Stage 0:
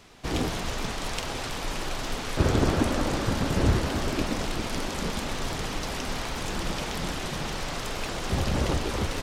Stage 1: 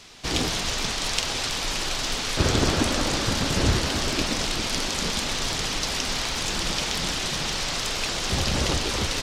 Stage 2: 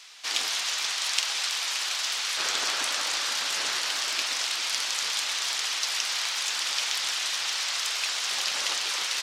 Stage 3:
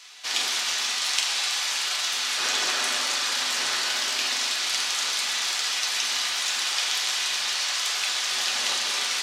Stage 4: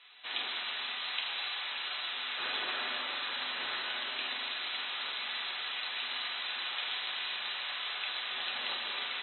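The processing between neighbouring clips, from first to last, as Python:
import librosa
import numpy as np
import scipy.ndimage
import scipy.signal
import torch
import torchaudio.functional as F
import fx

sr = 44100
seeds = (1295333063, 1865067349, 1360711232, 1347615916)

y1 = fx.peak_eq(x, sr, hz=5000.0, db=11.0, octaves=2.4)
y2 = scipy.signal.sosfilt(scipy.signal.butter(2, 1200.0, 'highpass', fs=sr, output='sos'), y1)
y3 = fx.rev_fdn(y2, sr, rt60_s=1.1, lf_ratio=1.45, hf_ratio=0.8, size_ms=24.0, drr_db=0.5)
y4 = fx.brickwall_lowpass(y3, sr, high_hz=4100.0)
y4 = F.gain(torch.from_numpy(y4), -8.0).numpy()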